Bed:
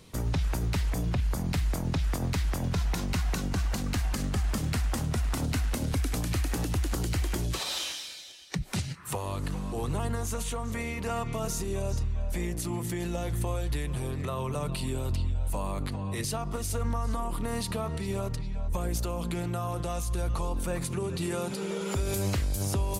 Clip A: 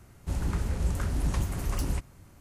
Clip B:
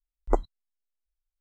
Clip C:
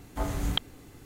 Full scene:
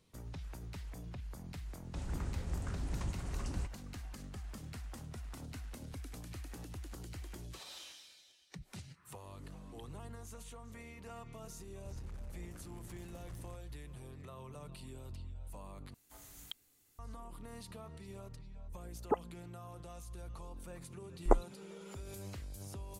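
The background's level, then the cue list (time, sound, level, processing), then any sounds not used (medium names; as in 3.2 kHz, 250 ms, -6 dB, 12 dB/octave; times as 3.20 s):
bed -17.5 dB
1.67 s: add A -10 dB + Chebyshev low-pass 8.6 kHz, order 3
9.22 s: add C -17.5 dB + talking filter a-i 2.9 Hz
11.56 s: add A -15.5 dB + saturation -34 dBFS
15.94 s: replace with C -10 dB + pre-emphasis filter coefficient 0.9
18.79 s: add B -10.5 dB + formants replaced by sine waves
20.98 s: add B -2.5 dB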